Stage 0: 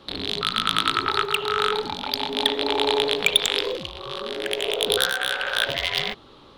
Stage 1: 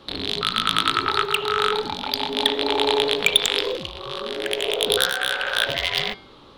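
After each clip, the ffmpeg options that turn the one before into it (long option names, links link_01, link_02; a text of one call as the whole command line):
ffmpeg -i in.wav -af "bandreject=frequency=194.3:width_type=h:width=4,bandreject=frequency=388.6:width_type=h:width=4,bandreject=frequency=582.9:width_type=h:width=4,bandreject=frequency=777.2:width_type=h:width=4,bandreject=frequency=971.5:width_type=h:width=4,bandreject=frequency=1165.8:width_type=h:width=4,bandreject=frequency=1360.1:width_type=h:width=4,bandreject=frequency=1554.4:width_type=h:width=4,bandreject=frequency=1748.7:width_type=h:width=4,bandreject=frequency=1943:width_type=h:width=4,bandreject=frequency=2137.3:width_type=h:width=4,bandreject=frequency=2331.6:width_type=h:width=4,bandreject=frequency=2525.9:width_type=h:width=4,bandreject=frequency=2720.2:width_type=h:width=4,bandreject=frequency=2914.5:width_type=h:width=4,bandreject=frequency=3108.8:width_type=h:width=4,bandreject=frequency=3303.1:width_type=h:width=4,bandreject=frequency=3497.4:width_type=h:width=4,bandreject=frequency=3691.7:width_type=h:width=4,bandreject=frequency=3886:width_type=h:width=4,bandreject=frequency=4080.3:width_type=h:width=4,bandreject=frequency=4274.6:width_type=h:width=4,bandreject=frequency=4468.9:width_type=h:width=4,bandreject=frequency=4663.2:width_type=h:width=4,bandreject=frequency=4857.5:width_type=h:width=4,bandreject=frequency=5051.8:width_type=h:width=4,bandreject=frequency=5246.1:width_type=h:width=4,bandreject=frequency=5440.4:width_type=h:width=4,volume=1.5dB" out.wav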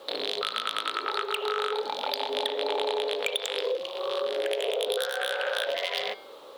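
ffmpeg -i in.wav -af "highpass=frequency=520:width_type=q:width=4,acrusher=bits=8:mix=0:aa=0.5,acompressor=threshold=-23dB:ratio=6,volume=-2.5dB" out.wav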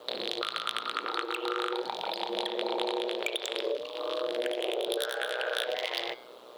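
ffmpeg -i in.wav -af "aeval=exprs='val(0)*sin(2*PI*61*n/s)':channel_layout=same" out.wav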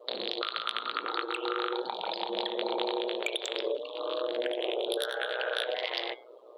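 ffmpeg -i in.wav -af "afftdn=noise_reduction=20:noise_floor=-46" out.wav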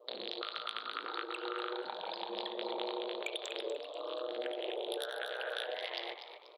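ffmpeg -i in.wav -filter_complex "[0:a]asplit=5[link_01][link_02][link_03][link_04][link_05];[link_02]adelay=242,afreqshift=130,volume=-10dB[link_06];[link_03]adelay=484,afreqshift=260,volume=-19.6dB[link_07];[link_04]adelay=726,afreqshift=390,volume=-29.3dB[link_08];[link_05]adelay=968,afreqshift=520,volume=-38.9dB[link_09];[link_01][link_06][link_07][link_08][link_09]amix=inputs=5:normalize=0,volume=-7.5dB" out.wav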